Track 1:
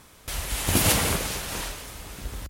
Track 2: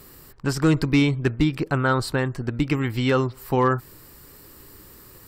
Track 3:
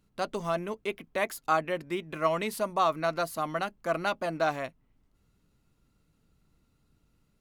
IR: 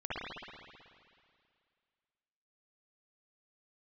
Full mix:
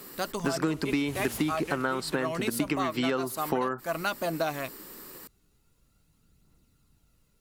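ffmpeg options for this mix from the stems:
-filter_complex "[0:a]adelay=400,volume=0.211[s0];[1:a]highpass=f=180:w=0.5412,highpass=f=180:w=1.3066,volume=1.33[s1];[2:a]highshelf=f=5000:g=9.5,aphaser=in_gain=1:out_gain=1:delay=2.8:decay=0.32:speed=0.46:type=triangular,volume=1.06[s2];[s0][s1][s2]amix=inputs=3:normalize=0,acompressor=threshold=0.0631:ratio=12"

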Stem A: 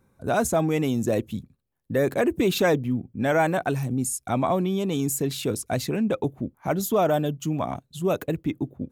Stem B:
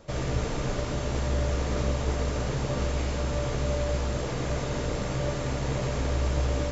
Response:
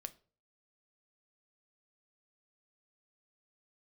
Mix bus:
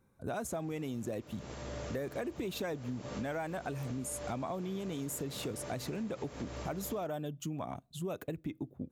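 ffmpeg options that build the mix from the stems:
-filter_complex "[0:a]volume=0.422,asplit=3[s0][s1][s2];[s1]volume=0.188[s3];[1:a]highpass=f=160:p=1,adelay=350,volume=0.251,afade=t=in:st=1.32:d=0.48:silence=0.446684,asplit=2[s4][s5];[s5]volume=0.631[s6];[s2]apad=whole_len=311770[s7];[s4][s7]sidechaincompress=threshold=0.0178:ratio=8:attack=31:release=236[s8];[2:a]atrim=start_sample=2205[s9];[s3][s6]amix=inputs=2:normalize=0[s10];[s10][s9]afir=irnorm=-1:irlink=0[s11];[s0][s8][s11]amix=inputs=3:normalize=0,acompressor=threshold=0.0178:ratio=6"

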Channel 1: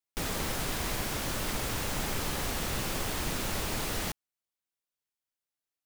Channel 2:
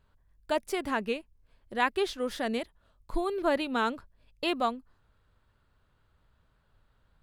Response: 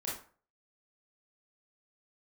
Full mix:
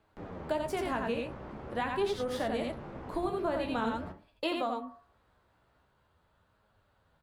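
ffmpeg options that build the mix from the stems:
-filter_complex "[0:a]lowpass=1000,acompressor=mode=upward:threshold=0.00794:ratio=2.5,asoftclip=type=tanh:threshold=0.0473,volume=0.708,asplit=3[s0][s1][s2];[s1]volume=0.316[s3];[s2]volume=0.178[s4];[1:a]equalizer=f=740:w=0.98:g=6,bandreject=f=141.3:t=h:w=4,bandreject=f=282.6:t=h:w=4,bandreject=f=423.9:t=h:w=4,bandreject=f=565.2:t=h:w=4,bandreject=f=706.5:t=h:w=4,bandreject=f=847.8:t=h:w=4,bandreject=f=989.1:t=h:w=4,bandreject=f=1130.4:t=h:w=4,bandreject=f=1271.7:t=h:w=4,bandreject=f=1413:t=h:w=4,bandreject=f=1554.3:t=h:w=4,bandreject=f=1695.6:t=h:w=4,bandreject=f=1836.9:t=h:w=4,volume=1.12,asplit=3[s5][s6][s7];[s6]volume=0.282[s8];[s7]volume=0.708[s9];[2:a]atrim=start_sample=2205[s10];[s3][s8]amix=inputs=2:normalize=0[s11];[s11][s10]afir=irnorm=-1:irlink=0[s12];[s4][s9]amix=inputs=2:normalize=0,aecho=0:1:86:1[s13];[s0][s5][s12][s13]amix=inputs=4:normalize=0,highpass=f=77:p=1,acrossover=split=250[s14][s15];[s15]acompressor=threshold=0.0501:ratio=6[s16];[s14][s16]amix=inputs=2:normalize=0,flanger=delay=9.4:depth=7.3:regen=45:speed=0.45:shape=sinusoidal"

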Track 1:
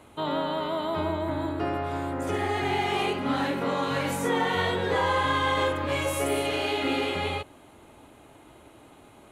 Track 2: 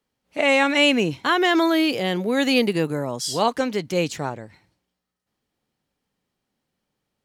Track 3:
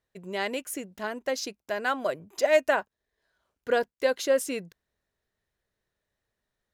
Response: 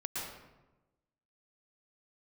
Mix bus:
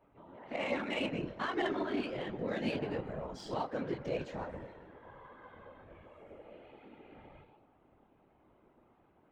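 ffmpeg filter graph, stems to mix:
-filter_complex "[0:a]acompressor=threshold=0.00447:ratio=1.5,volume=0.447,asplit=2[s0][s1];[s1]volume=0.299[s2];[1:a]acompressor=threshold=0.0224:ratio=2,adelay=150,volume=1.19,asplit=2[s3][s4];[s4]volume=0.126[s5];[2:a]adynamicequalizer=threshold=0.00891:dfrequency=2300:dqfactor=0.7:tfrequency=2300:tqfactor=0.7:attack=5:release=100:ratio=0.375:range=3.5:mode=cutabove:tftype=highshelf,volume=0.376,asplit=3[s6][s7][s8];[s7]volume=0.266[s9];[s8]volume=0.355[s10];[s0][s6]amix=inputs=2:normalize=0,lowpass=f=4300:w=0.5412,lowpass=f=4300:w=1.3066,acompressor=threshold=0.00398:ratio=3,volume=1[s11];[3:a]atrim=start_sample=2205[s12];[s2][s5][s9]amix=inputs=3:normalize=0[s13];[s13][s12]afir=irnorm=-1:irlink=0[s14];[s10]aecho=0:1:100|200|300|400|500|600|700|800:1|0.54|0.292|0.157|0.085|0.0459|0.0248|0.0134[s15];[s3][s11][s14][s15]amix=inputs=4:normalize=0,flanger=delay=18.5:depth=7.1:speed=1.3,afftfilt=real='hypot(re,im)*cos(2*PI*random(0))':imag='hypot(re,im)*sin(2*PI*random(1))':win_size=512:overlap=0.75,adynamicsmooth=sensitivity=3:basefreq=2500"

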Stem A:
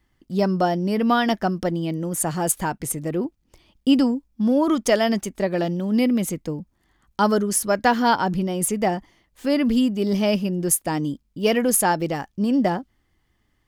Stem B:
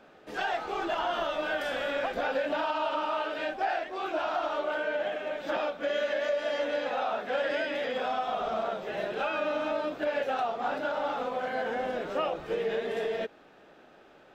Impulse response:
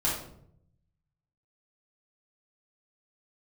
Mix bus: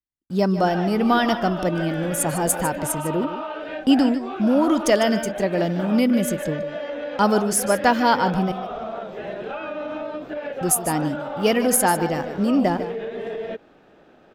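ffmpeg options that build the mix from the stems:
-filter_complex "[0:a]agate=range=0.02:threshold=0.00708:ratio=16:detection=peak,volume=1.06,asplit=3[s0][s1][s2];[s0]atrim=end=8.52,asetpts=PTS-STARTPTS,afade=t=out:st=8.516:d=0.004:c=hsin[s3];[s1]atrim=start=8.52:end=10.61,asetpts=PTS-STARTPTS,volume=0[s4];[s2]atrim=start=10.61,asetpts=PTS-STARTPTS,afade=t=in:d=0.004:c=hsin[s5];[s3][s4][s5]concat=n=3:v=0:a=1,asplit=2[s6][s7];[s7]volume=0.251[s8];[1:a]acrossover=split=3800[s9][s10];[s10]acompressor=threshold=0.00112:ratio=4:attack=1:release=60[s11];[s9][s11]amix=inputs=2:normalize=0,lowshelf=f=440:g=8.5,alimiter=limit=0.0841:level=0:latency=1:release=74,adelay=300,volume=0.944[s12];[s8]aecho=0:1:150:1[s13];[s6][s12][s13]amix=inputs=3:normalize=0"

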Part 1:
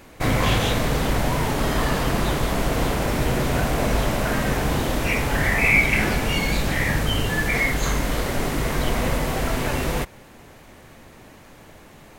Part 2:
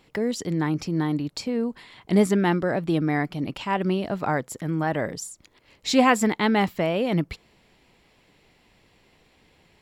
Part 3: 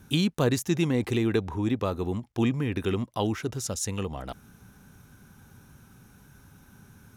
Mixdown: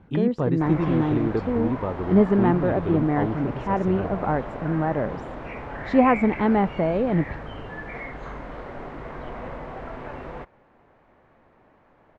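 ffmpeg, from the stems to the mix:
-filter_complex "[0:a]lowshelf=f=410:g=-11,adelay=400,volume=0.562[s0];[1:a]volume=1.19[s1];[2:a]volume=1[s2];[s0][s1][s2]amix=inputs=3:normalize=0,lowpass=1200"

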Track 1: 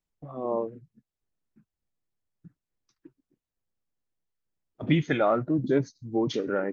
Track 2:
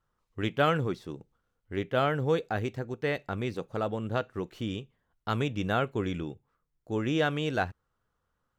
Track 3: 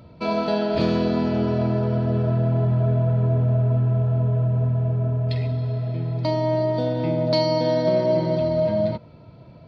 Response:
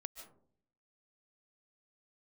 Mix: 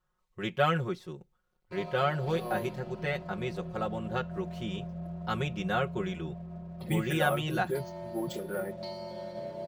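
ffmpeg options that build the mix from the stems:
-filter_complex "[0:a]acrusher=samples=4:mix=1:aa=0.000001,adelay=2000,volume=0.316[s0];[1:a]volume=0.631[s1];[2:a]aeval=exprs='val(0)*sin(2*PI*46*n/s)':c=same,aeval=exprs='sgn(val(0))*max(abs(val(0))-0.00708,0)':c=same,adelay=1500,volume=0.119[s2];[s0][s1][s2]amix=inputs=3:normalize=0,equalizer=f=270:w=4.1:g=-11,aecho=1:1:5.5:0.97"

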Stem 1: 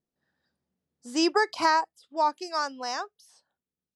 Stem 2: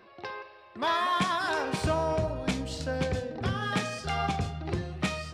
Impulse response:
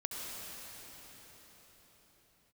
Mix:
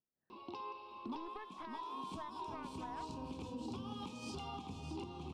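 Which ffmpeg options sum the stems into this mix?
-filter_complex "[0:a]lowpass=f=1800:w=0.5412,lowpass=f=1800:w=1.3066,acompressor=threshold=0.02:ratio=4,aeval=exprs='0.0794*(cos(1*acos(clip(val(0)/0.0794,-1,1)))-cos(1*PI/2))+0.0112*(cos(3*acos(clip(val(0)/0.0794,-1,1)))-cos(3*PI/2))+0.0112*(cos(4*acos(clip(val(0)/0.0794,-1,1)))-cos(4*PI/2))+0.00316*(cos(5*acos(clip(val(0)/0.0794,-1,1)))-cos(5*PI/2))':c=same,volume=0.316,asplit=3[s0][s1][s2];[s1]volume=0.106[s3];[1:a]firequalizer=gain_entry='entry(160,0);entry(250,13);entry(640,-9);entry(940,14);entry(1700,-25);entry(2600,5);entry(4500,2)':delay=0.05:min_phase=1,acompressor=threshold=0.0251:ratio=5,adelay=300,volume=0.708,asplit=2[s4][s5];[s5]volume=0.398[s6];[s2]apad=whole_len=252914[s7];[s4][s7]sidechaincompress=threshold=0.00158:ratio=8:attack=6.5:release=653[s8];[2:a]atrim=start_sample=2205[s9];[s3][s9]afir=irnorm=-1:irlink=0[s10];[s6]aecho=0:1:612|1224|1836|2448|3060:1|0.36|0.13|0.0467|0.0168[s11];[s0][s8][s10][s11]amix=inputs=4:normalize=0,alimiter=level_in=3.55:limit=0.0631:level=0:latency=1:release=453,volume=0.282"

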